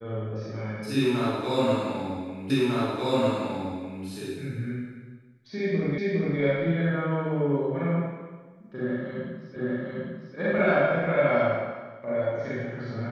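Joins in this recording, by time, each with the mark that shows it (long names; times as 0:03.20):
0:02.50: the same again, the last 1.55 s
0:05.98: the same again, the last 0.41 s
0:09.56: the same again, the last 0.8 s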